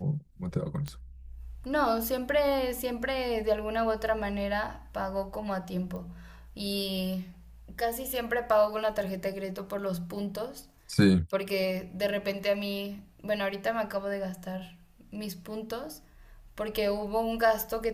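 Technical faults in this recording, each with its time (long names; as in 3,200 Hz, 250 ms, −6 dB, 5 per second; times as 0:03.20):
0:00.88: click −21 dBFS
0:05.96: click −29 dBFS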